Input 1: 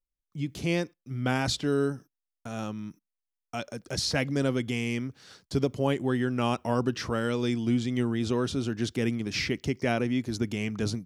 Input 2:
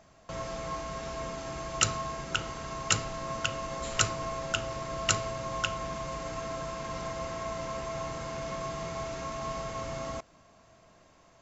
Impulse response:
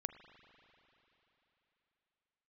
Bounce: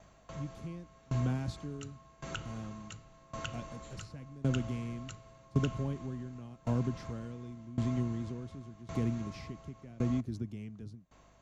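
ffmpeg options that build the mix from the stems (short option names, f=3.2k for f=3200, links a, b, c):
-filter_complex "[0:a]lowshelf=f=480:g=11,volume=-7dB[a];[1:a]bandreject=f=5.1k:w=7.7,volume=0dB[b];[a][b]amix=inputs=2:normalize=0,acrossover=split=230[c][d];[d]acompressor=threshold=-41dB:ratio=2[e];[c][e]amix=inputs=2:normalize=0,aeval=exprs='val(0)+0.000891*(sin(2*PI*50*n/s)+sin(2*PI*2*50*n/s)/2+sin(2*PI*3*50*n/s)/3+sin(2*PI*4*50*n/s)/4+sin(2*PI*5*50*n/s)/5)':c=same,aeval=exprs='val(0)*pow(10,-22*if(lt(mod(0.9*n/s,1),2*abs(0.9)/1000),1-mod(0.9*n/s,1)/(2*abs(0.9)/1000),(mod(0.9*n/s,1)-2*abs(0.9)/1000)/(1-2*abs(0.9)/1000))/20)':c=same"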